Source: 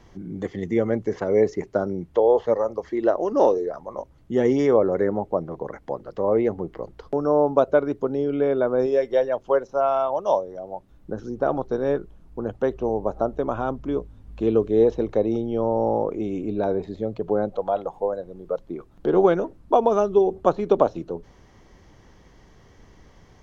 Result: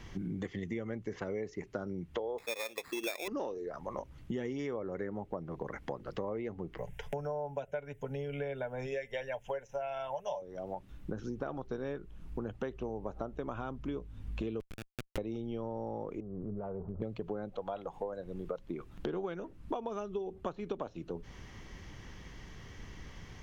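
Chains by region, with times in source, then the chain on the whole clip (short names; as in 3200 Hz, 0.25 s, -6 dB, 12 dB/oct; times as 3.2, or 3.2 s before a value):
2.38–3.28 HPF 400 Hz + sample-rate reducer 3000 Hz
6.78–10.42 high shelf 2700 Hz +8.5 dB + fixed phaser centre 1200 Hz, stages 6 + comb 6.9 ms, depth 49%
14.6–15.18 HPF 520 Hz + compressor 16:1, threshold -27 dBFS + Schmitt trigger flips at -25 dBFS
16.2–17.02 steep low-pass 1400 Hz 96 dB/oct + bell 300 Hz -14.5 dB 0.46 oct + compressor 4:1, threshold -36 dBFS
whole clip: EQ curve 150 Hz 0 dB, 650 Hz -7 dB, 2700 Hz +5 dB, 4200 Hz 0 dB; compressor 10:1, threshold -38 dBFS; gain +3.5 dB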